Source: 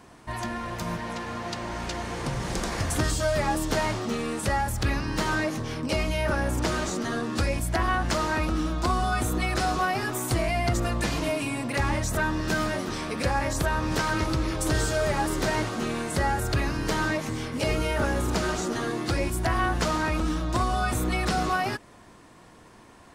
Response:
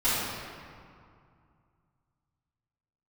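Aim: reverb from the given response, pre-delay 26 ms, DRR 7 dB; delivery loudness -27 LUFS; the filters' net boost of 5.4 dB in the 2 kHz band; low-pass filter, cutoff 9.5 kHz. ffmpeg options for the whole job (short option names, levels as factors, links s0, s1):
-filter_complex "[0:a]lowpass=9500,equalizer=f=2000:t=o:g=7,asplit=2[s0][s1];[1:a]atrim=start_sample=2205,adelay=26[s2];[s1][s2]afir=irnorm=-1:irlink=0,volume=0.0891[s3];[s0][s3]amix=inputs=2:normalize=0,volume=0.75"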